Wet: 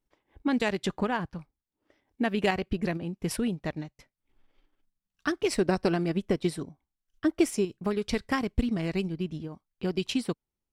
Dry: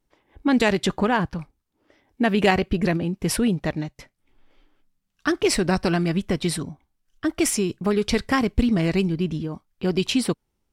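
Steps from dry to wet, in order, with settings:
0:05.54–0:07.65: dynamic equaliser 410 Hz, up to +6 dB, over −36 dBFS, Q 0.91
transient designer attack +3 dB, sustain −6 dB
level −8.5 dB

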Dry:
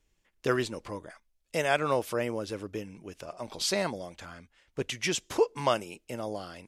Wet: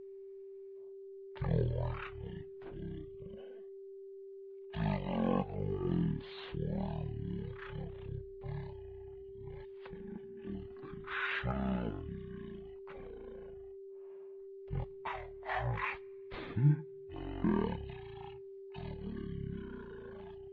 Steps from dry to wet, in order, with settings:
phase shifter 1.9 Hz, delay 3.5 ms, feedback 27%
steady tone 1,200 Hz −39 dBFS
change of speed 0.325×
level −7.5 dB

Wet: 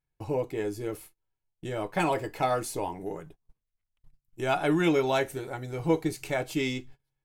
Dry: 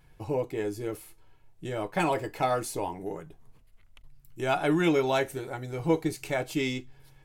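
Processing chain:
noise gate −46 dBFS, range −27 dB

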